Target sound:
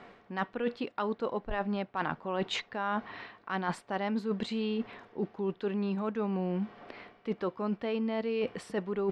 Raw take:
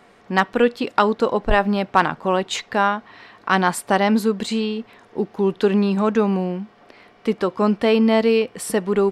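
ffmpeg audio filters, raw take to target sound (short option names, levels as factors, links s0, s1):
-af "lowpass=3800,areverse,acompressor=threshold=0.0355:ratio=12,areverse"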